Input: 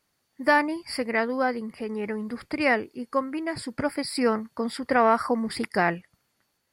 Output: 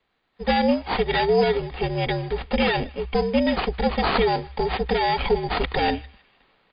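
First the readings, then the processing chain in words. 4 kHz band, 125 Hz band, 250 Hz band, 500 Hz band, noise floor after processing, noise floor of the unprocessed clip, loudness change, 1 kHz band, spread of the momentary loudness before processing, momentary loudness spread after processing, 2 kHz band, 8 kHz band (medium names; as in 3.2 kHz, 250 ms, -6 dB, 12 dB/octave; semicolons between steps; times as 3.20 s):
+9.0 dB, +11.5 dB, +2.0 dB, +4.5 dB, -72 dBFS, -75 dBFS, +3.0 dB, +2.5 dB, 10 LU, 6 LU, -0.5 dB, under -35 dB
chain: comb filter that takes the minimum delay 2.1 ms; band-stop 560 Hz, Q 12; comb 3.5 ms, depth 32%; level rider gain up to 12.5 dB; peak limiter -12.5 dBFS, peak gain reduction 11 dB; frequency shift -70 Hz; static phaser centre 330 Hz, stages 6; sample-and-hold 8×; wow and flutter 17 cents; on a send: band-passed feedback delay 155 ms, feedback 48%, band-pass 2.7 kHz, level -22.5 dB; on the sum: trim +4.5 dB; MP2 64 kbps 16 kHz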